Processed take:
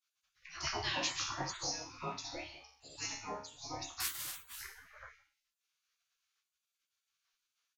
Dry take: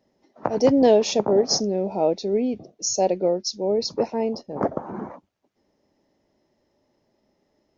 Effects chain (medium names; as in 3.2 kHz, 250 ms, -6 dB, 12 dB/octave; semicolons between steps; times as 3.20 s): 4.00–4.47 s: zero-crossing glitches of -19.5 dBFS; chord resonator C#2 fifth, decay 0.54 s; resampled via 32 kHz; spectral gate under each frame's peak -30 dB weak; trim +15.5 dB